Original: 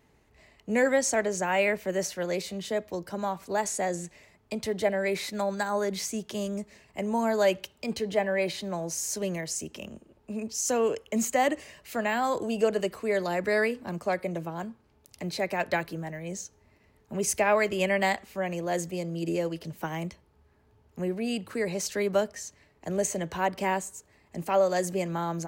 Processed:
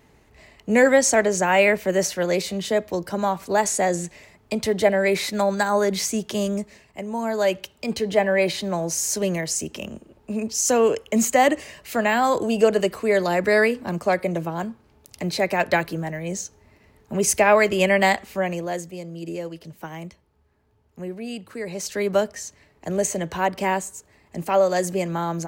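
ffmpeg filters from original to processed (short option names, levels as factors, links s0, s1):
-af "volume=15.8,afade=t=out:st=6.51:d=0.54:silence=0.334965,afade=t=in:st=7.05:d=1.25:silence=0.354813,afade=t=out:st=18.37:d=0.46:silence=0.334965,afade=t=in:st=21.63:d=0.5:silence=0.446684"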